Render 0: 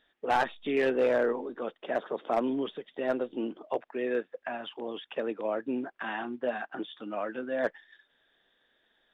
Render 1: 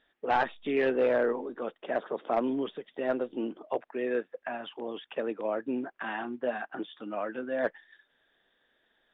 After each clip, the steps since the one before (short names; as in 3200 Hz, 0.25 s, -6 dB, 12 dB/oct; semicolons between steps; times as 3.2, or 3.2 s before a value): LPF 3500 Hz 12 dB/oct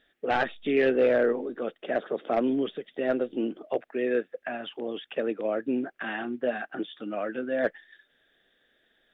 bell 970 Hz -11.5 dB 0.54 oct; gain +4.5 dB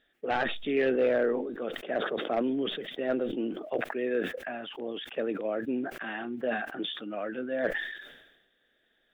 sustainer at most 55 dB/s; gain -3.5 dB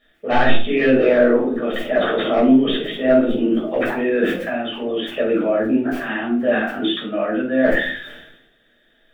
shoebox room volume 390 m³, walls furnished, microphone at 6.2 m; gain +2 dB